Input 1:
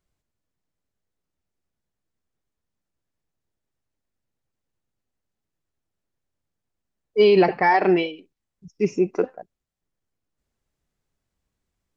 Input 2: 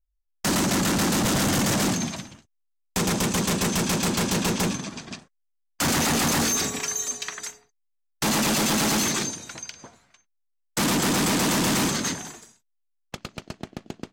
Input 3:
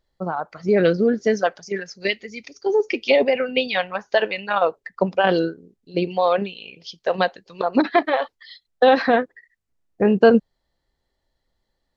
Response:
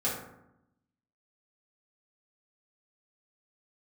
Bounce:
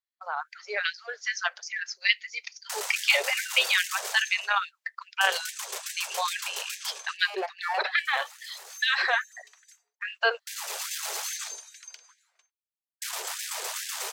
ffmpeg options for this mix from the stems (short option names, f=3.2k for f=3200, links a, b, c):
-filter_complex "[0:a]bandreject=f=53.53:t=h:w=4,bandreject=f=107.06:t=h:w=4,adynamicsmooth=sensitivity=5.5:basefreq=2.9k,aeval=exprs='clip(val(0),-1,0.168)':c=same,volume=-11dB,asplit=2[a][b];[1:a]highshelf=f=5.2k:g=4.5,adelay=2250,volume=-10.5dB[c];[2:a]highpass=1.4k,agate=range=-21dB:threshold=-52dB:ratio=16:detection=peak,volume=2.5dB[d];[b]apad=whole_len=722220[e];[c][e]sidechaincompress=threshold=-48dB:ratio=5:attack=26:release=1180[f];[a][f][d]amix=inputs=3:normalize=0,afftfilt=real='re*gte(b*sr/1024,370*pow(1600/370,0.5+0.5*sin(2*PI*2.4*pts/sr)))':imag='im*gte(b*sr/1024,370*pow(1600/370,0.5+0.5*sin(2*PI*2.4*pts/sr)))':win_size=1024:overlap=0.75"